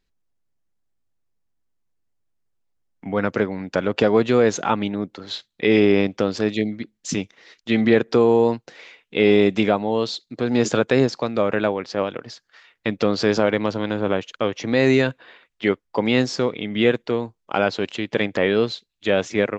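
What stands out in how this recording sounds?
background noise floor −75 dBFS
spectral slope −4.5 dB per octave

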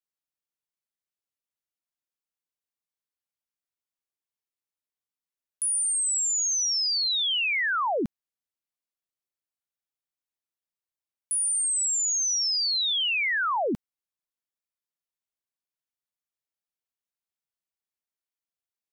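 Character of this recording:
background noise floor −94 dBFS
spectral slope +1.0 dB per octave

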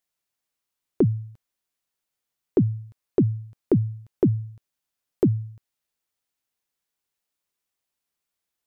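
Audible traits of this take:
background noise floor −85 dBFS
spectral slope −4.5 dB per octave

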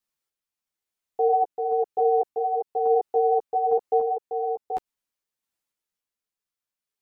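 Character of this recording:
sample-and-hold tremolo, depth 55%
a shimmering, thickened sound

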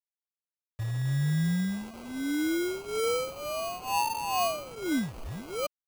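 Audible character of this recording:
a quantiser's noise floor 8 bits, dither none
phaser sweep stages 4, 0.9 Hz, lowest notch 230–1,200 Hz
aliases and images of a low sample rate 1,800 Hz, jitter 0%
MP3

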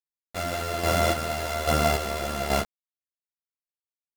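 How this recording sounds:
a buzz of ramps at a fixed pitch in blocks of 64 samples
chopped level 1.2 Hz, depth 60%, duty 35%
a quantiser's noise floor 6 bits, dither none
a shimmering, thickened sound

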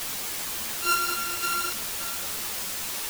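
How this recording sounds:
a buzz of ramps at a fixed pitch in blocks of 32 samples
sample-and-hold tremolo, depth 100%
a quantiser's noise floor 6 bits, dither triangular
a shimmering, thickened sound

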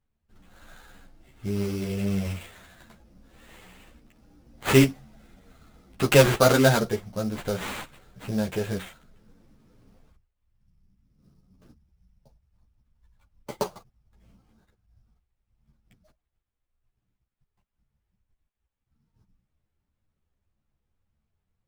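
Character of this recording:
aliases and images of a low sample rate 5,400 Hz, jitter 20%
a shimmering, thickened sound

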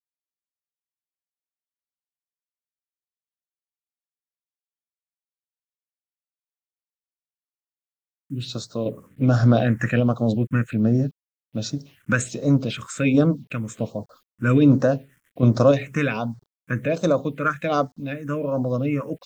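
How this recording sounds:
sample-and-hold tremolo
a quantiser's noise floor 10 bits, dither none
phaser sweep stages 4, 1.3 Hz, lowest notch 660–2,600 Hz

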